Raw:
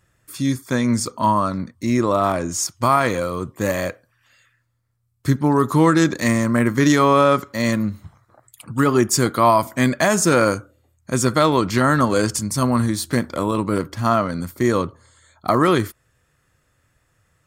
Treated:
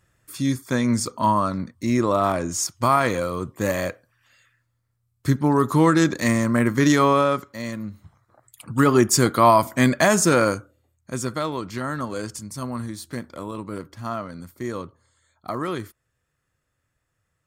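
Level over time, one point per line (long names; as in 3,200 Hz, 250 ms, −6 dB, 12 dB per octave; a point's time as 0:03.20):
0:07.05 −2 dB
0:07.71 −11.5 dB
0:08.78 0 dB
0:10.10 0 dB
0:11.59 −11.5 dB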